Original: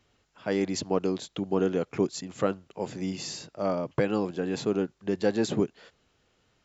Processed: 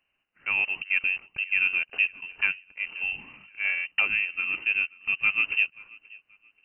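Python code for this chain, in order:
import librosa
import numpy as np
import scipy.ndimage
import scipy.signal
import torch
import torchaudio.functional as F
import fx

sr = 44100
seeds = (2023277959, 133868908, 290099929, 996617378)

y = fx.law_mismatch(x, sr, coded='A')
y = scipy.signal.sosfilt(scipy.signal.butter(2, 90.0, 'highpass', fs=sr, output='sos'), y)
y = fx.low_shelf(y, sr, hz=210.0, db=5.5)
y = fx.echo_feedback(y, sr, ms=531, feedback_pct=29, wet_db=-23.5)
y = fx.freq_invert(y, sr, carrier_hz=2900)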